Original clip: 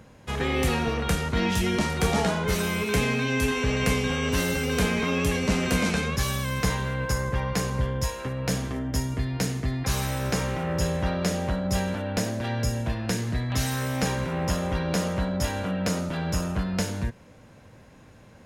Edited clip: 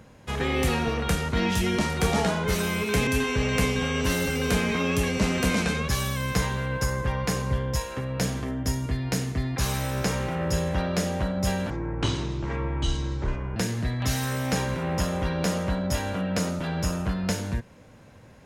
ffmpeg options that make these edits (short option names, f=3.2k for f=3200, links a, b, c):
-filter_complex "[0:a]asplit=4[a][b][c][d];[a]atrim=end=3.072[e];[b]atrim=start=3.348:end=11.984[f];[c]atrim=start=11.98:end=13.06,asetpts=PTS-STARTPTS,asetrate=25578,aresample=44100,atrim=end_sample=82117,asetpts=PTS-STARTPTS[g];[d]atrim=start=13.056[h];[e][f]acrossfade=d=0.004:c1=hsin:c2=hsin[i];[i][g]acrossfade=d=0.004:c1=hsin:c2=hsin[j];[j][h]acrossfade=d=0.004:c1=hsin:c2=hsin"